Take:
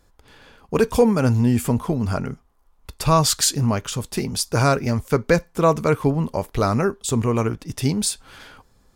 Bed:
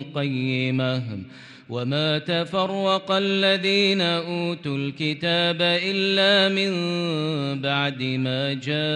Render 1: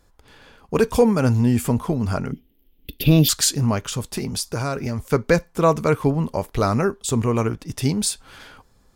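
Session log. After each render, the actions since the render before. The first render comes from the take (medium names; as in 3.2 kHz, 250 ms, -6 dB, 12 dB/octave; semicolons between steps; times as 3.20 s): 2.32–3.29 s: FFT filter 110 Hz 0 dB, 290 Hz +14 dB, 490 Hz 0 dB, 730 Hz -12 dB, 1.1 kHz -28 dB, 1.9 kHz -4 dB, 3.1 kHz +12 dB, 4.7 kHz -5 dB, 8.6 kHz -18 dB, 13 kHz +14 dB; 4.02–5.05 s: compression, threshold -20 dBFS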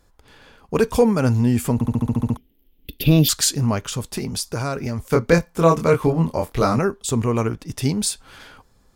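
1.74 s: stutter in place 0.07 s, 9 plays; 5.09–6.79 s: doubling 24 ms -3 dB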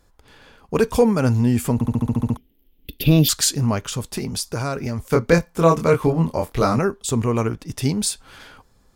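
no audible change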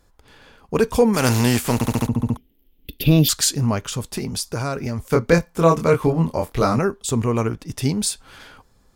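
1.13–2.06 s: spectral contrast reduction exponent 0.59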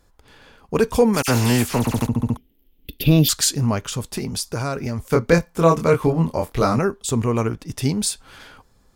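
1.22–1.98 s: phase dispersion lows, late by 60 ms, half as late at 2.7 kHz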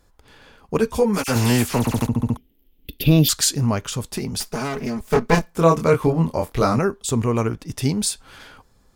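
0.78–1.36 s: three-phase chorus; 4.40–5.51 s: comb filter that takes the minimum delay 4.7 ms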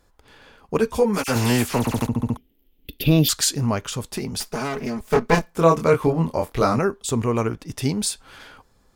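tone controls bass -3 dB, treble -2 dB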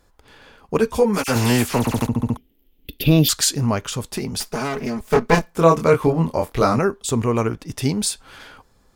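trim +2 dB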